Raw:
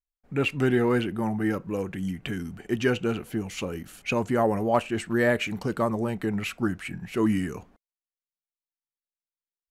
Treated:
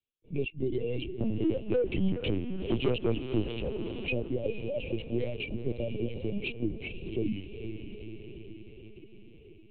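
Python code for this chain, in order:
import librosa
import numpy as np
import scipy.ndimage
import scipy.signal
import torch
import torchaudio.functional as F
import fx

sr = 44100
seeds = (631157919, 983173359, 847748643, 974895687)

y = scipy.signal.sosfilt(scipy.signal.butter(2, 73.0, 'highpass', fs=sr, output='sos'), x)
y = fx.dereverb_blind(y, sr, rt60_s=1.6)
y = scipy.signal.sosfilt(scipy.signal.ellip(3, 1.0, 40, [550.0, 2500.0], 'bandstop', fs=sr, output='sos'), y)
y = fx.rider(y, sr, range_db=4, speed_s=0.5)
y = fx.leveller(y, sr, passes=2, at=(1.2, 3.53))
y = fx.rotary_switch(y, sr, hz=0.9, then_hz=5.5, switch_at_s=4.04)
y = fx.echo_diffused(y, sr, ms=464, feedback_pct=54, wet_db=-10)
y = fx.lpc_vocoder(y, sr, seeds[0], excitation='pitch_kept', order=10)
y = fx.band_squash(y, sr, depth_pct=40)
y = y * 10.0 ** (-2.0 / 20.0)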